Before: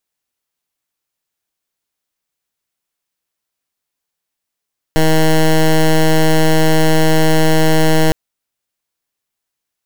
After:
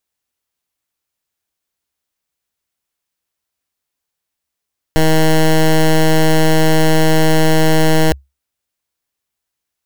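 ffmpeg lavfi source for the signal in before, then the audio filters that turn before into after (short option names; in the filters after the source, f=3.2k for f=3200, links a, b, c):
-f lavfi -i "aevalsrc='0.316*(2*lt(mod(158*t,1),0.13)-1)':d=3.16:s=44100"
-af "equalizer=f=68:w=3.7:g=11.5"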